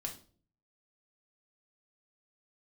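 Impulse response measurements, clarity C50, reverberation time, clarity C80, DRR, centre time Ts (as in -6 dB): 11.0 dB, 0.45 s, 16.5 dB, 0.5 dB, 14 ms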